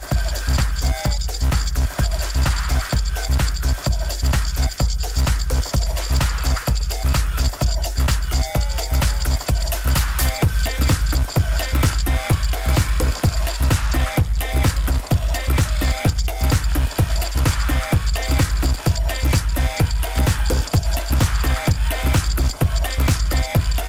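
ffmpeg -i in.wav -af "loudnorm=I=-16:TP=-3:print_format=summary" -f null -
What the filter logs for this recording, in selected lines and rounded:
Input Integrated:    -20.6 LUFS
Input True Peak:      -5.4 dBTP
Input LRA:             1.4 LU
Input Threshold:     -30.6 LUFS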